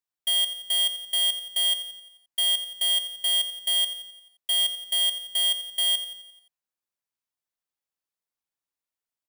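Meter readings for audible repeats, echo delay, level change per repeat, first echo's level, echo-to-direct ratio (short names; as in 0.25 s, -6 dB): 5, 87 ms, -5.5 dB, -12.0 dB, -10.5 dB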